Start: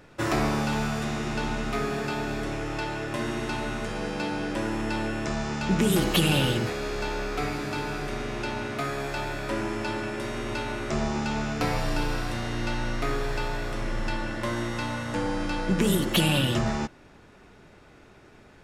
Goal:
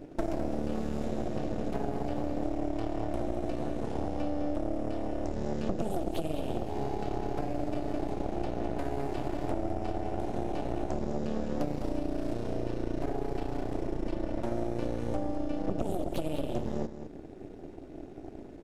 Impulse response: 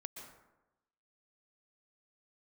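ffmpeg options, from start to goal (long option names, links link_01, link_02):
-filter_complex "[0:a]firequalizer=gain_entry='entry(180,0);entry(300,13);entry(770,-13);entry(6800,-9)':delay=0.05:min_phase=1,acompressor=threshold=-35dB:ratio=12,aeval=exprs='0.0944*(cos(1*acos(clip(val(0)/0.0944,-1,1)))-cos(1*PI/2))+0.0422*(cos(6*acos(clip(val(0)/0.0944,-1,1)))-cos(6*PI/2))':channel_layout=same,asplit=2[link_01][link_02];[link_02]aecho=0:1:208:0.299[link_03];[link_01][link_03]amix=inputs=2:normalize=0,volume=1dB"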